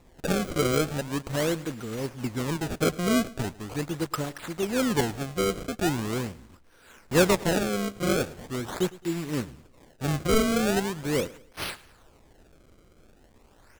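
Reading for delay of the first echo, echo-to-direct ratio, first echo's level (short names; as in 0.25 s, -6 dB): 0.108 s, -20.0 dB, -20.5 dB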